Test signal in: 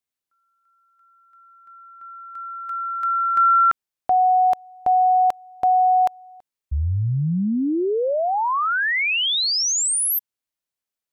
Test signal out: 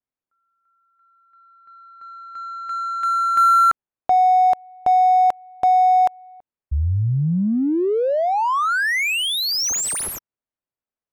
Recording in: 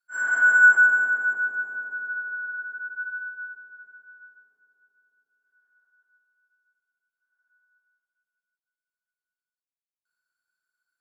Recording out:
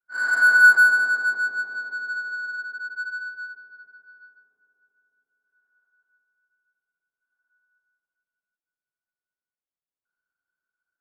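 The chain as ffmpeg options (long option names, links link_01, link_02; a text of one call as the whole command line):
ffmpeg -i in.wav -af "adynamicsmooth=sensitivity=5:basefreq=1700,adynamicequalizer=threshold=0.0126:dfrequency=3700:dqfactor=1.1:tfrequency=3700:tqfactor=1.1:attack=5:release=100:ratio=0.375:range=2:mode=cutabove:tftype=bell,volume=2dB" out.wav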